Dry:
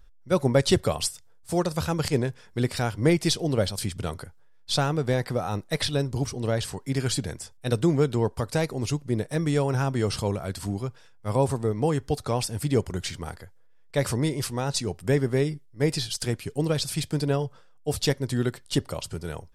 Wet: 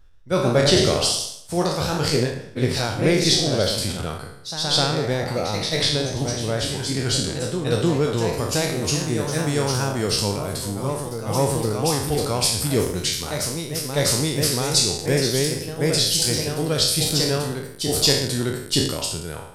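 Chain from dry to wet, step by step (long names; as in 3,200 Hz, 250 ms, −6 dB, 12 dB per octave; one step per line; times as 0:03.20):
peak hold with a decay on every bin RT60 0.74 s
dynamic equaliser 4,600 Hz, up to +6 dB, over −41 dBFS, Q 1.1
delay with pitch and tempo change per echo 133 ms, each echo +1 semitone, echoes 2, each echo −6 dB
high-shelf EQ 8,100 Hz −3 dB, from 0:08.33 +10 dB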